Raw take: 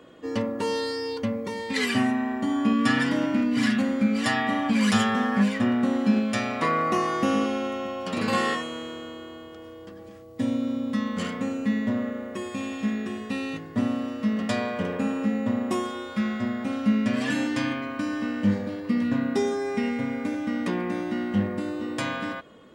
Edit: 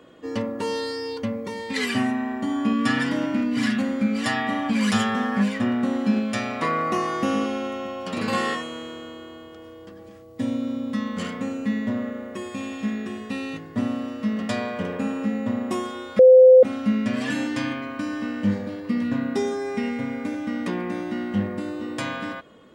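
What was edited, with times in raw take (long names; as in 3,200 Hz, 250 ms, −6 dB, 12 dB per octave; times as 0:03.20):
0:16.19–0:16.63: beep over 514 Hz −7 dBFS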